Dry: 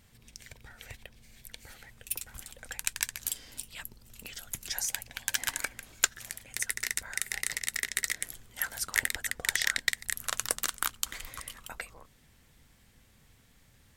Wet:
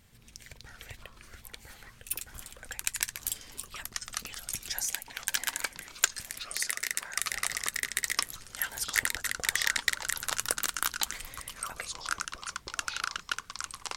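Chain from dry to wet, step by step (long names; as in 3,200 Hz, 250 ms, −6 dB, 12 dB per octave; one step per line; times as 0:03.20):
0:04.83–0:07.18: high-pass filter 220 Hz 12 dB per octave
delay with pitch and tempo change per echo 127 ms, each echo −5 semitones, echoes 2, each echo −6 dB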